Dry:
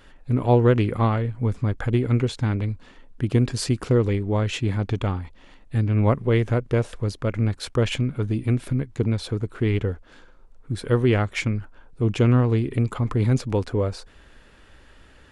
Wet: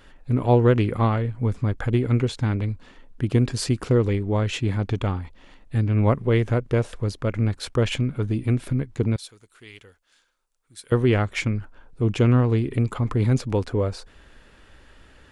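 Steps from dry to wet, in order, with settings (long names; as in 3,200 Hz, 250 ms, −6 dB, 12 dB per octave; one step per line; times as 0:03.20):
0:09.16–0:10.92: first-order pre-emphasis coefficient 0.97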